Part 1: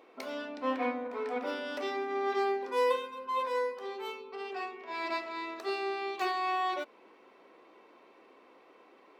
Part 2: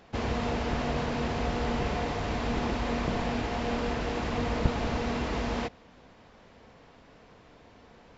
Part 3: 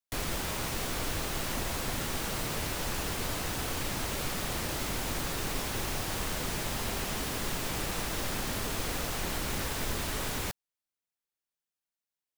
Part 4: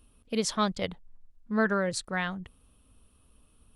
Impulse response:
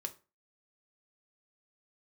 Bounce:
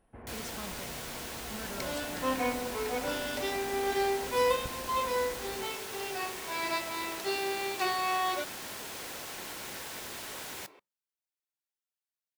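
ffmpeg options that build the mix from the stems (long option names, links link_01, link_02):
-filter_complex "[0:a]highshelf=frequency=3700:gain=8.5,adelay=1600,volume=0.5dB[link_01];[1:a]lowpass=frequency=2000:width=0.5412,lowpass=frequency=2000:width=1.3066,volume=-18.5dB,asplit=2[link_02][link_03];[link_03]volume=-9.5dB[link_04];[2:a]highpass=frequency=490:poles=1,adelay=150,volume=-7.5dB,asplit=2[link_05][link_06];[link_06]volume=-8dB[link_07];[3:a]alimiter=limit=-21.5dB:level=0:latency=1,volume=-13.5dB[link_08];[4:a]atrim=start_sample=2205[link_09];[link_04][link_07]amix=inputs=2:normalize=0[link_10];[link_10][link_09]afir=irnorm=-1:irlink=0[link_11];[link_01][link_02][link_05][link_08][link_11]amix=inputs=5:normalize=0,bandreject=frequency=1200:width=14"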